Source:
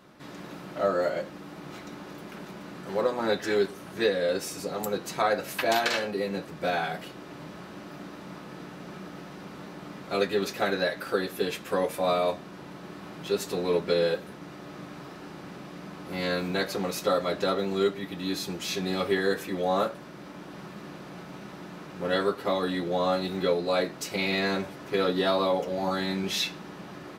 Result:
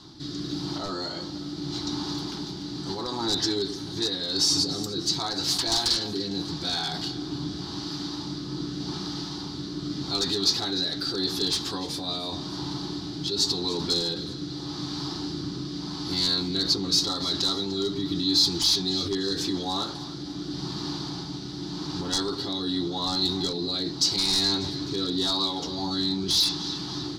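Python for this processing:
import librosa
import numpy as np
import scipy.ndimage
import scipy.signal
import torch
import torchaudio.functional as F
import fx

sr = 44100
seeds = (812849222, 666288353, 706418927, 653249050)

p1 = fx.rotary(x, sr, hz=0.85)
p2 = fx.over_compress(p1, sr, threshold_db=-38.0, ratio=-1.0)
p3 = p1 + (p2 * librosa.db_to_amplitude(0.0))
p4 = fx.peak_eq(p3, sr, hz=3300.0, db=13.5, octaves=1.2)
p5 = fx.echo_split(p4, sr, split_hz=510.0, low_ms=130, high_ms=297, feedback_pct=52, wet_db=-16.0)
p6 = 10.0 ** (-16.0 / 20.0) * (np.abs((p5 / 10.0 ** (-16.0 / 20.0) + 3.0) % 4.0 - 2.0) - 1.0)
p7 = fx.curve_eq(p6, sr, hz=(130.0, 210.0, 310.0, 560.0, 840.0, 2600.0, 4600.0, 12000.0), db=(0, -12, 0, -24, -6, -25, 3, -16))
y = p7 * librosa.db_to_amplitude(5.5)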